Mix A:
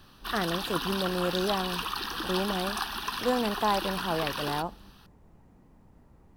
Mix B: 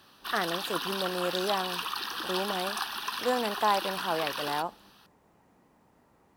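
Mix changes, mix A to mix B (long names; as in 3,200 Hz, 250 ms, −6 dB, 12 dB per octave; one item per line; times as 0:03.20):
speech +3.0 dB
master: add high-pass filter 590 Hz 6 dB per octave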